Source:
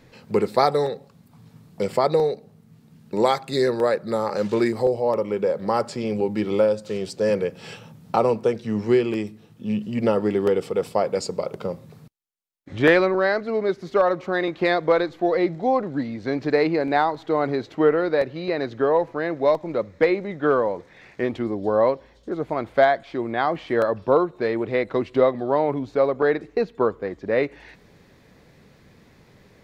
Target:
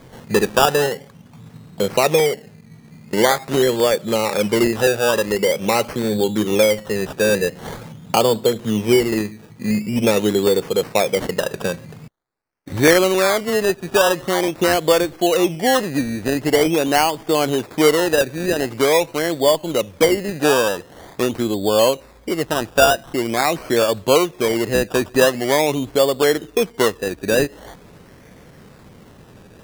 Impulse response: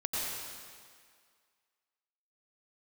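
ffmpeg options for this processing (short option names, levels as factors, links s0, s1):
-filter_complex "[0:a]asplit=2[s0][s1];[s1]acompressor=threshold=0.0316:ratio=6,volume=1.06[s2];[s0][s2]amix=inputs=2:normalize=0,acrusher=samples=16:mix=1:aa=0.000001:lfo=1:lforange=9.6:lforate=0.45,volume=1.26"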